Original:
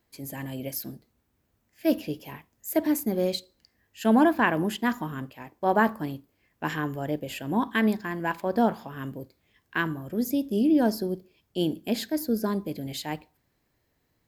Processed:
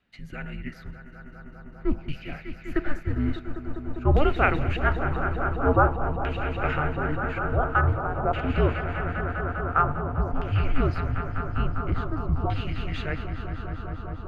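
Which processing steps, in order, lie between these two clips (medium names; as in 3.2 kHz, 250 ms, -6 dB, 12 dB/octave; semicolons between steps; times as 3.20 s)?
echo with a slow build-up 200 ms, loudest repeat 5, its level -12 dB; frequency shift -300 Hz; LFO low-pass saw down 0.48 Hz 950–2800 Hz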